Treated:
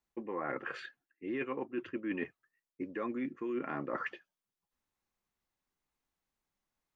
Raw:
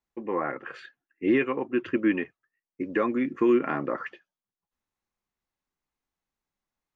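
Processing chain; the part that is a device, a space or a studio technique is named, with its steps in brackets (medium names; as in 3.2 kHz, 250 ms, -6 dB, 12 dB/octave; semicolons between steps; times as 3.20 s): compression on the reversed sound (reverse; compression 16:1, threshold -33 dBFS, peak gain reduction 16.5 dB; reverse)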